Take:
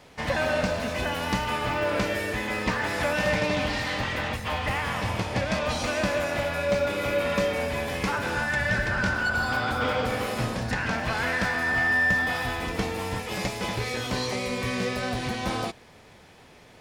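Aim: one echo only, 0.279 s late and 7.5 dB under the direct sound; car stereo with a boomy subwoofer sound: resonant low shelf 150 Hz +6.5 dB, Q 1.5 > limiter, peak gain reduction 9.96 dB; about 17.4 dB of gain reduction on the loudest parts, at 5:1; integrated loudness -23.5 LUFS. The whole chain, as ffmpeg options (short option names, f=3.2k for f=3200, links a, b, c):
-af "acompressor=threshold=-41dB:ratio=5,lowshelf=f=150:t=q:w=1.5:g=6.5,aecho=1:1:279:0.422,volume=21dB,alimiter=limit=-15dB:level=0:latency=1"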